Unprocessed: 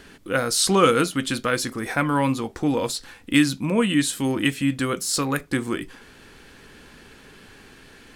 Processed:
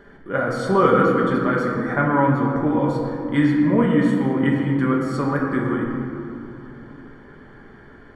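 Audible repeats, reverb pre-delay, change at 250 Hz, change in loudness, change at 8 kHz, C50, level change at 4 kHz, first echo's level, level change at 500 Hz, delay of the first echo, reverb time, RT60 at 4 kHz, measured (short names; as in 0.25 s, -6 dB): none, 5 ms, +4.0 dB, +2.5 dB, under -20 dB, 1.0 dB, -14.0 dB, none, +4.0 dB, none, 2.7 s, 1.2 s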